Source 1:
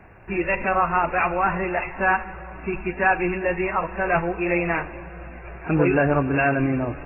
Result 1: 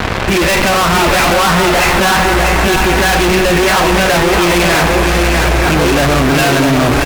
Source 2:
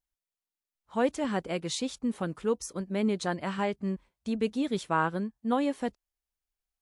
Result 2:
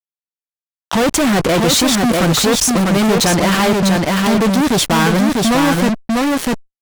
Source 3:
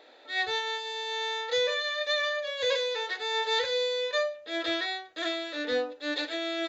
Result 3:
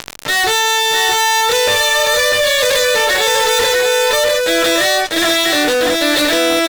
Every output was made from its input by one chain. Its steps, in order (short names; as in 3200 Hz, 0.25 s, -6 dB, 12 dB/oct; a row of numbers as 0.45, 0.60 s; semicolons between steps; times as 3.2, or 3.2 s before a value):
fuzz box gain 47 dB, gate -47 dBFS; on a send: echo 0.647 s -4 dB; on the sum: fast leveller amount 50%; normalise peaks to -3 dBFS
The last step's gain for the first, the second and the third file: +1.5, -0.5, -1.0 dB